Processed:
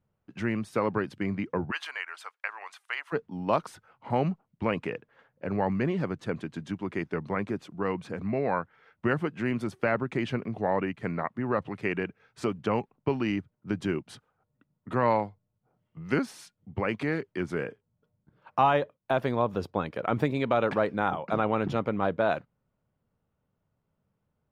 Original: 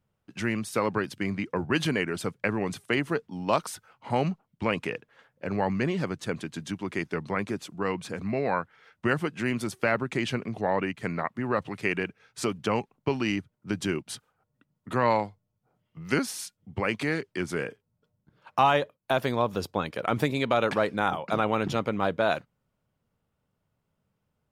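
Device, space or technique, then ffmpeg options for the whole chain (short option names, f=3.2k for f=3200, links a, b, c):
through cloth: -filter_complex "[0:a]highshelf=f=3.6k:g=-16,asplit=3[a][b][c];[a]afade=t=out:st=1.7:d=0.02[d];[b]highpass=f=920:w=0.5412,highpass=f=920:w=1.3066,afade=t=in:st=1.7:d=0.02,afade=t=out:st=3.12:d=0.02[e];[c]afade=t=in:st=3.12:d=0.02[f];[d][e][f]amix=inputs=3:normalize=0"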